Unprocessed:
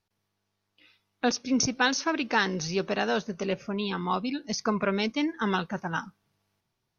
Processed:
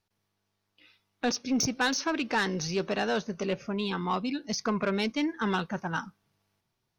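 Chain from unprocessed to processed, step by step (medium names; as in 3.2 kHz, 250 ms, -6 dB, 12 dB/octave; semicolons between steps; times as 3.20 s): saturation -19.5 dBFS, distortion -16 dB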